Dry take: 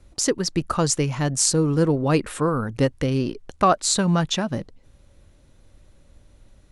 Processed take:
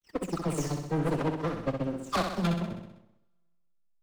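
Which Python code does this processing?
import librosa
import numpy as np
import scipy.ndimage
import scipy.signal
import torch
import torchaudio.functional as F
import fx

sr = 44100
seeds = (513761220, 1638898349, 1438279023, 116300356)

p1 = fx.spec_delay(x, sr, highs='early', ms=539)
p2 = fx.high_shelf(p1, sr, hz=5000.0, db=-8.5)
p3 = fx.backlash(p2, sr, play_db=-27.5)
p4 = fx.power_curve(p3, sr, exponent=2.0)
p5 = fx.volume_shaper(p4, sr, bpm=90, per_beat=1, depth_db=-4, release_ms=70.0, shape='slow start')
p6 = fx.stretch_vocoder(p5, sr, factor=0.6)
p7 = 10.0 ** (-29.0 / 20.0) * np.tanh(p6 / 10.0 ** (-29.0 / 20.0))
p8 = p7 + fx.echo_feedback(p7, sr, ms=64, feedback_pct=60, wet_db=-6, dry=0)
p9 = fx.rev_double_slope(p8, sr, seeds[0], early_s=0.34, late_s=1.8, knee_db=-22, drr_db=15.5)
y = p9 * librosa.db_to_amplitude(5.5)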